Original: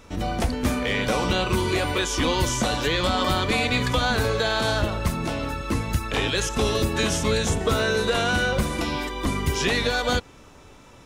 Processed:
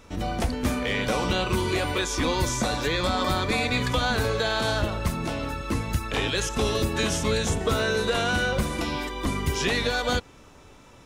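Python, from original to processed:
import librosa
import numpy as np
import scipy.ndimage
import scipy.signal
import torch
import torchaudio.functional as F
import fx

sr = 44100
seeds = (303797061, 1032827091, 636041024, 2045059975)

y = fx.notch(x, sr, hz=3000.0, q=7.6, at=(2.01, 3.77))
y = F.gain(torch.from_numpy(y), -2.0).numpy()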